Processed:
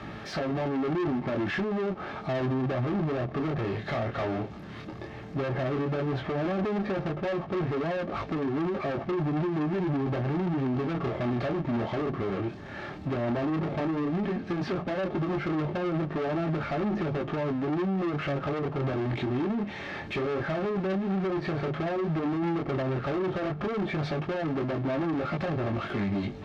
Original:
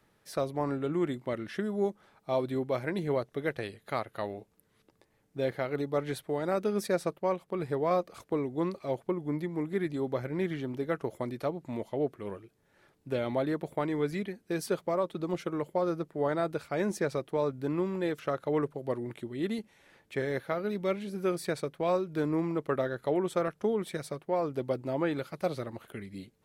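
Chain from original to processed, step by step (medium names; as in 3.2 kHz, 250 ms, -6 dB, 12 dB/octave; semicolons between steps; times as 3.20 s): low-pass that closes with the level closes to 670 Hz, closed at -27 dBFS; power-law waveshaper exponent 0.5; chorus 0.12 Hz, delay 18.5 ms, depth 7.7 ms; hard clipper -34.5 dBFS, distortion -6 dB; distance through air 220 m; comb of notches 490 Hz; trim +9 dB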